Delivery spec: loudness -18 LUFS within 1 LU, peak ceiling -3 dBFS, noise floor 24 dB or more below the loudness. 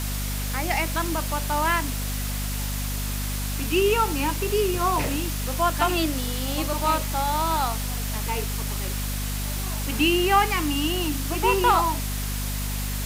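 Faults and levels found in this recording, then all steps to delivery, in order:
hum 50 Hz; highest harmonic 250 Hz; hum level -26 dBFS; noise floor -28 dBFS; noise floor target -49 dBFS; loudness -24.5 LUFS; peak level -7.0 dBFS; loudness target -18.0 LUFS
-> hum notches 50/100/150/200/250 Hz; noise reduction 21 dB, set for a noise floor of -28 dBFS; trim +6.5 dB; peak limiter -3 dBFS

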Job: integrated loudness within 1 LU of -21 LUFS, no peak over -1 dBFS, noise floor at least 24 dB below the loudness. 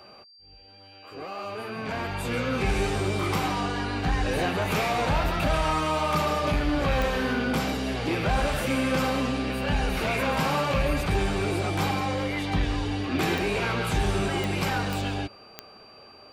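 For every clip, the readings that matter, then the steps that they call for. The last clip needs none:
clicks found 5; steady tone 4.7 kHz; tone level -51 dBFS; loudness -26.5 LUFS; peak level -15.0 dBFS; loudness target -21.0 LUFS
-> de-click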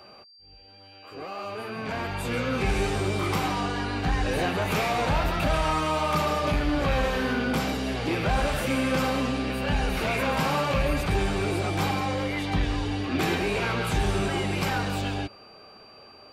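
clicks found 0; steady tone 4.7 kHz; tone level -51 dBFS
-> band-stop 4.7 kHz, Q 30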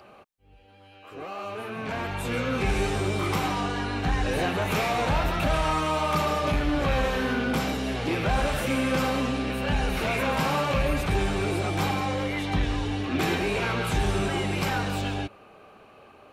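steady tone not found; loudness -26.5 LUFS; peak level -15.0 dBFS; loudness target -21.0 LUFS
-> trim +5.5 dB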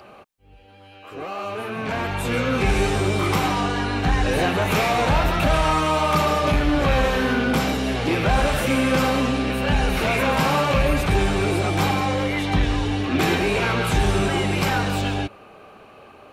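loudness -21.0 LUFS; peak level -9.5 dBFS; noise floor -47 dBFS

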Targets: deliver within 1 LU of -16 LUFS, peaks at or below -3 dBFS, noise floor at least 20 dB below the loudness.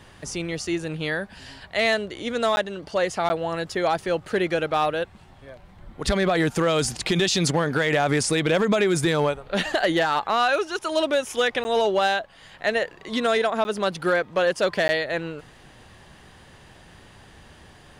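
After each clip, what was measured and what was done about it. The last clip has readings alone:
clipped samples 0.5%; clipping level -14.0 dBFS; dropouts 5; longest dropout 10 ms; loudness -23.5 LUFS; peak level -14.0 dBFS; loudness target -16.0 LUFS
-> clip repair -14 dBFS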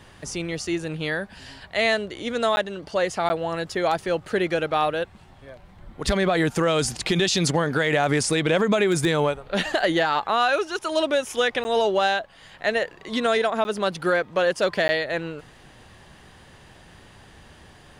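clipped samples 0.0%; dropouts 5; longest dropout 10 ms
-> interpolate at 2.56/3.29/11.64/13.64/14.88 s, 10 ms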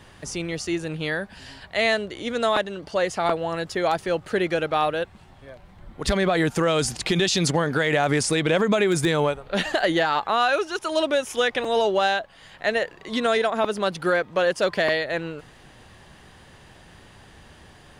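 dropouts 0; loudness -23.5 LUFS; peak level -6.5 dBFS; loudness target -16.0 LUFS
-> trim +7.5 dB; peak limiter -3 dBFS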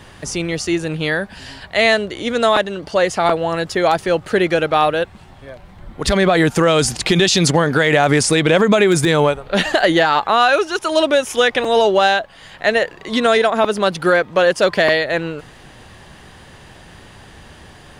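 loudness -16.0 LUFS; peak level -3.0 dBFS; noise floor -42 dBFS

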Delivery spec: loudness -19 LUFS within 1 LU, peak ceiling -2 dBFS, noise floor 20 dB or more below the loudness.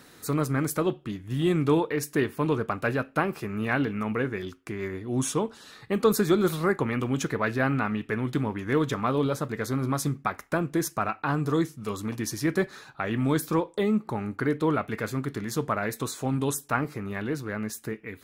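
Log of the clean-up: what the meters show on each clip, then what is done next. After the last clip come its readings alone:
loudness -28.0 LUFS; peak level -9.5 dBFS; loudness target -19.0 LUFS
-> trim +9 dB; peak limiter -2 dBFS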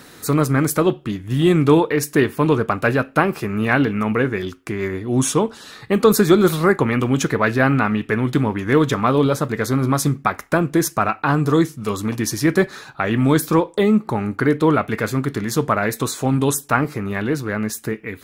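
loudness -19.0 LUFS; peak level -2.0 dBFS; noise floor -44 dBFS

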